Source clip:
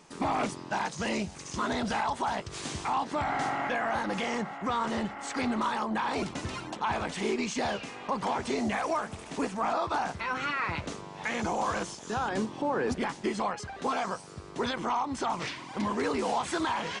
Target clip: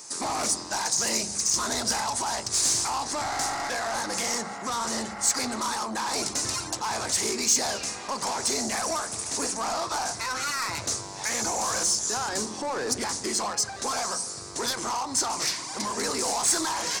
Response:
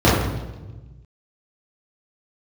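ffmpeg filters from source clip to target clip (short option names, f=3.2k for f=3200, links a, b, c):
-filter_complex "[0:a]asplit=2[a][b];[1:a]atrim=start_sample=2205,lowshelf=f=190:g=10.5[c];[b][c]afir=irnorm=-1:irlink=0,volume=-42dB[d];[a][d]amix=inputs=2:normalize=0,asplit=2[e][f];[f]highpass=f=720:p=1,volume=16dB,asoftclip=type=tanh:threshold=-17.5dB[g];[e][g]amix=inputs=2:normalize=0,lowpass=f=4k:p=1,volume=-6dB,aexciter=amount=8.5:drive=7.1:freq=4.6k,volume=-5dB"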